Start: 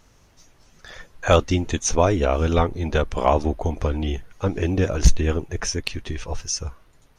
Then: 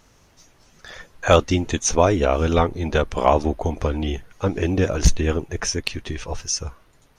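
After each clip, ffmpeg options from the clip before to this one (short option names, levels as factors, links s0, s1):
-af "lowshelf=f=79:g=-5.5,volume=1.26"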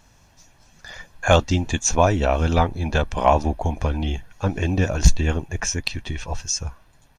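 -af "aecho=1:1:1.2:0.47,volume=0.891"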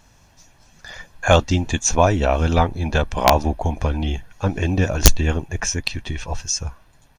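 -af "aeval=exprs='(mod(1.41*val(0)+1,2)-1)/1.41':c=same,volume=1.19"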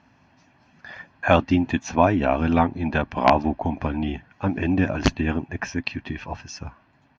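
-af "highpass=120,equalizer=f=260:t=q:w=4:g=7,equalizer=f=480:t=q:w=4:g=-7,equalizer=f=3600:t=q:w=4:g=-10,lowpass=f=3900:w=0.5412,lowpass=f=3900:w=1.3066,volume=0.891"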